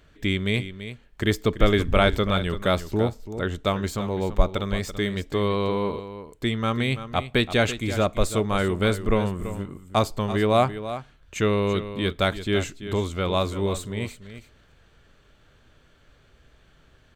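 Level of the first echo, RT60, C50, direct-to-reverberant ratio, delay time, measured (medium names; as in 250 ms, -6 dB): -12.0 dB, no reverb, no reverb, no reverb, 335 ms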